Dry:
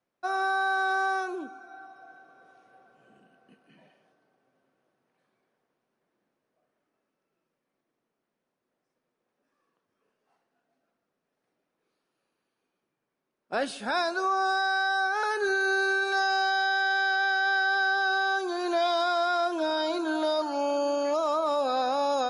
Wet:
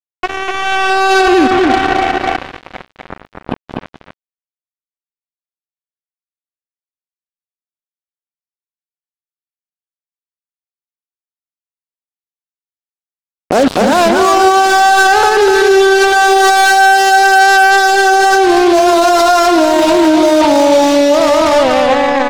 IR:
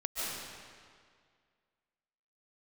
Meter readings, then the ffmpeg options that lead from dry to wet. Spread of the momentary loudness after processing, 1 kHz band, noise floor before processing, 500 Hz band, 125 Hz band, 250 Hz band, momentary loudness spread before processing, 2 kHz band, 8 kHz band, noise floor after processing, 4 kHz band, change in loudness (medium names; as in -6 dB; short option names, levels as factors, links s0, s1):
9 LU, +18.5 dB, -83 dBFS, +19.5 dB, no reading, +22.5 dB, 5 LU, +14.0 dB, +25.5 dB, under -85 dBFS, +16.5 dB, +17.5 dB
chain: -filter_complex "[0:a]asplit=2[s0][s1];[1:a]atrim=start_sample=2205,asetrate=30870,aresample=44100[s2];[s1][s2]afir=irnorm=-1:irlink=0,volume=0.0531[s3];[s0][s3]amix=inputs=2:normalize=0,acompressor=threshold=0.00562:ratio=3,equalizer=f=125:t=o:w=1:g=5,equalizer=f=250:t=o:w=1:g=9,equalizer=f=500:t=o:w=1:g=7,equalizer=f=1000:t=o:w=1:g=4,equalizer=f=2000:t=o:w=1:g=-5,equalizer=f=8000:t=o:w=1:g=-9,dynaudnorm=f=160:g=13:m=3.35,highshelf=f=7100:g=-10.5,bandreject=f=215:t=h:w=4,bandreject=f=430:t=h:w=4,bandreject=f=645:t=h:w=4,acrusher=bits=4:mix=0:aa=0.5,aecho=1:1:248:0.631,alimiter=level_in=15.8:limit=0.891:release=50:level=0:latency=1,volume=0.891"